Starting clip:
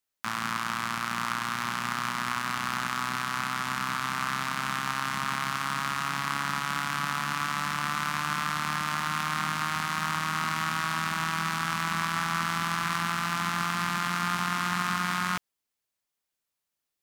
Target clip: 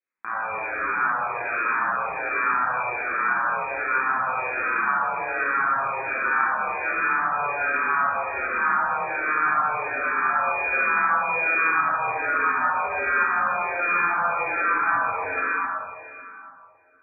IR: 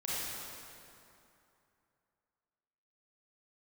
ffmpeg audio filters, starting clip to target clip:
-filter_complex "[0:a]lowpass=f=2.2k:t=q:w=0.5098,lowpass=f=2.2k:t=q:w=0.6013,lowpass=f=2.2k:t=q:w=0.9,lowpass=f=2.2k:t=q:w=2.563,afreqshift=-2600,lowshelf=f=85:g=-10.5,bandreject=f=74.67:t=h:w=4,bandreject=f=149.34:t=h:w=4,bandreject=f=224.01:t=h:w=4,bandreject=f=298.68:t=h:w=4,bandreject=f=373.35:t=h:w=4,bandreject=f=448.02:t=h:w=4,bandreject=f=522.69:t=h:w=4,bandreject=f=597.36:t=h:w=4,bandreject=f=672.03:t=h:w=4,bandreject=f=746.7:t=h:w=4,bandreject=f=821.37:t=h:w=4,bandreject=f=896.04:t=h:w=4,bandreject=f=970.71:t=h:w=4,bandreject=f=1.04538k:t=h:w=4,bandreject=f=1.12005k:t=h:w=4,bandreject=f=1.19472k:t=h:w=4,bandreject=f=1.26939k:t=h:w=4,bandreject=f=1.34406k:t=h:w=4,bandreject=f=1.41873k:t=h:w=4,bandreject=f=1.4934k:t=h:w=4,bandreject=f=1.56807k:t=h:w=4,bandreject=f=1.64274k:t=h:w=4,bandreject=f=1.71741k:t=h:w=4,bandreject=f=1.79208k:t=h:w=4,bandreject=f=1.86675k:t=h:w=4,bandreject=f=1.94142k:t=h:w=4,bandreject=f=2.01609k:t=h:w=4,bandreject=f=2.09076k:t=h:w=4,bandreject=f=2.16543k:t=h:w=4,bandreject=f=2.2401k:t=h:w=4,bandreject=f=2.31477k:t=h:w=4,bandreject=f=2.38944k:t=h:w=4,bandreject=f=2.46411k:t=h:w=4[a];[1:a]atrim=start_sample=2205[b];[a][b]afir=irnorm=-1:irlink=0,asplit=2[c][d];[d]afreqshift=-1.3[e];[c][e]amix=inputs=2:normalize=1,volume=5.5dB"

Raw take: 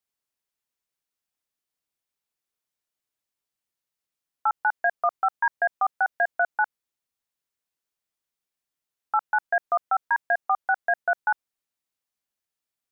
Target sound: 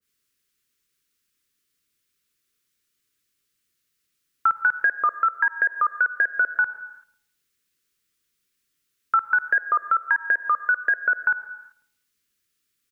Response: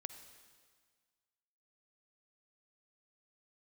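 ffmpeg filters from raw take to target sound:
-filter_complex "[0:a]asuperstop=centerf=760:order=4:qfactor=0.93,asplit=2[a][b];[b]adelay=165,lowpass=f=830:p=1,volume=-22dB,asplit=2[c][d];[d]adelay=165,lowpass=f=830:p=1,volume=0.5,asplit=2[e][f];[f]adelay=165,lowpass=f=830:p=1,volume=0.5[g];[a][c][e][g]amix=inputs=4:normalize=0,asplit=2[h][i];[1:a]atrim=start_sample=2205,afade=t=out:st=0.44:d=0.01,atrim=end_sample=19845[j];[i][j]afir=irnorm=-1:irlink=0,volume=4dB[k];[h][k]amix=inputs=2:normalize=0,acompressor=threshold=-22dB:ratio=6,adynamicequalizer=threshold=0.00891:dfrequency=1700:dqfactor=0.7:tfrequency=1700:tqfactor=0.7:attack=5:release=100:ratio=0.375:range=2:mode=cutabove:tftype=highshelf,volume=6dB"

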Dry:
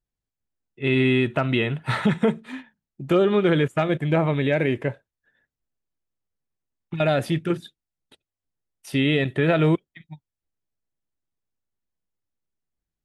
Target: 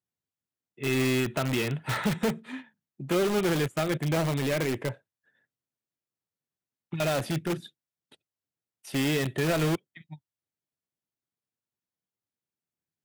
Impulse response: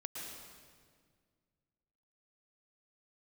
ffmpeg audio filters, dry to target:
-filter_complex "[0:a]highpass=f=97:w=0.5412,highpass=f=97:w=1.3066,asplit=2[a][b];[b]aeval=exprs='(mod(8.41*val(0)+1,2)-1)/8.41':c=same,volume=-5dB[c];[a][c]amix=inputs=2:normalize=0,volume=-7dB"

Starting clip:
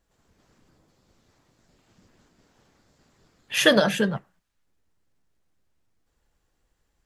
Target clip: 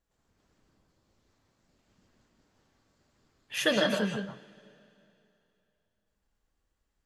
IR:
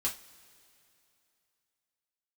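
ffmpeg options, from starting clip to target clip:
-filter_complex "[0:a]asplit=2[a][b];[1:a]atrim=start_sample=2205,lowpass=6.5k,adelay=148[c];[b][c]afir=irnorm=-1:irlink=0,volume=-7dB[d];[a][d]amix=inputs=2:normalize=0,volume=-9dB"

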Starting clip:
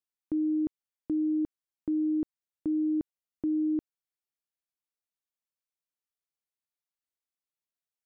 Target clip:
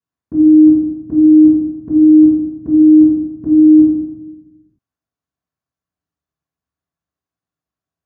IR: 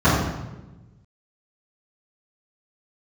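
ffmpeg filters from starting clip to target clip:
-filter_complex "[1:a]atrim=start_sample=2205[a];[0:a][a]afir=irnorm=-1:irlink=0,volume=-14dB"

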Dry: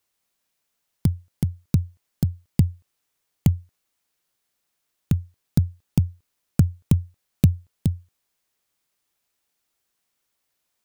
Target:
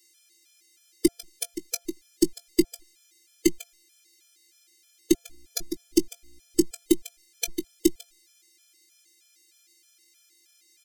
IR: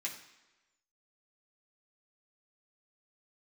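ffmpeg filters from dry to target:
-filter_complex "[0:a]lowshelf=f=210:g=-11.5,acompressor=threshold=-29dB:ratio=1.5,asplit=3[a][b][c];[a]bandpass=f=270:t=q:w=8,volume=0dB[d];[b]bandpass=f=2.29k:t=q:w=8,volume=-6dB[e];[c]bandpass=f=3.01k:t=q:w=8,volume=-9dB[f];[d][e][f]amix=inputs=3:normalize=0,asettb=1/sr,asplit=3[g][h][i];[g]atrim=end=5.184[j];[h]atrim=start=5.18:end=6.64,asetpts=PTS-STARTPTS,afade=t=in:d=0.004:c=qsin,afade=t=out:st=1.456:d=0.004:c=qsin,aeval=exprs='val(0)+0.000126*(sin(2*PI*60*n/s)+sin(2*PI*2*60*n/s)/2+sin(2*PI*3*60*n/s)/3+sin(2*PI*4*60*n/s)/4+sin(2*PI*5*60*n/s)/5)':c=same[k];[i]atrim=start=6.636[l];[j][k]acrossfade=d=0.004:c1=hsin:c2=qsin[m];[m][l]acrossfade=d=0.004:c1=qsin:c2=hsin,afftfilt=real='hypot(re,im)*cos(PI*b)':imag='0':win_size=512:overlap=0.75,aexciter=amount=10.9:drive=3.8:freq=4.5k,asplit=2[n][o];[o]adelay=19,volume=-13dB[p];[n][p]amix=inputs=2:normalize=0,asplit=2[q][r];[r]aecho=0:1:148:0.141[s];[q][s]amix=inputs=2:normalize=0,alimiter=level_in=32dB:limit=-1dB:release=50:level=0:latency=1,afftfilt=real='re*gt(sin(2*PI*3.2*pts/sr)*(1-2*mod(floor(b*sr/1024/440),2)),0)':imag='im*gt(sin(2*PI*3.2*pts/sr)*(1-2*mod(floor(b*sr/1024/440),2)),0)':win_size=1024:overlap=0.75"

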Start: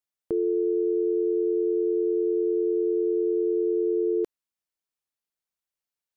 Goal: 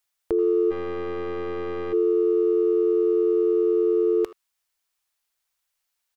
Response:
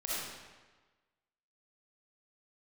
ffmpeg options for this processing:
-filter_complex "[0:a]asplit=2[a][b];[b]adelay=80,highpass=300,lowpass=3.4k,asoftclip=type=hard:threshold=-24.5dB,volume=-19dB[c];[a][c]amix=inputs=2:normalize=0,acontrast=28,equalizer=f=125:t=o:w=1:g=-12,equalizer=f=250:t=o:w=1:g=-11,equalizer=f=500:t=o:w=1:g=-5,asplit=3[d][e][f];[d]afade=t=out:st=0.7:d=0.02[g];[e]aeval=exprs='(tanh(56.2*val(0)+0.6)-tanh(0.6))/56.2':c=same,afade=t=in:st=0.7:d=0.02,afade=t=out:st=1.92:d=0.02[h];[f]afade=t=in:st=1.92:d=0.02[i];[g][h][i]amix=inputs=3:normalize=0,volume=7dB"

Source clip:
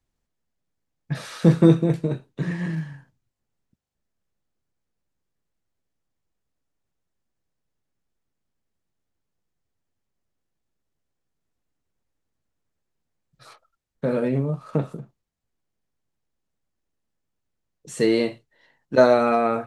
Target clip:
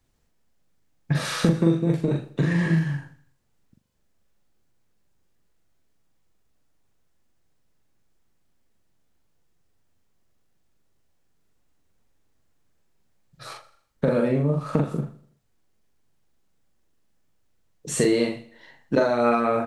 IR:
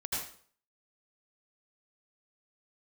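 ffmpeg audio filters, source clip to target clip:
-filter_complex "[0:a]acompressor=threshold=-26dB:ratio=10,asplit=2[a][b];[b]adelay=42,volume=-3dB[c];[a][c]amix=inputs=2:normalize=0,aecho=1:1:82|164|246|328:0.133|0.06|0.027|0.0122,volume=7.5dB"

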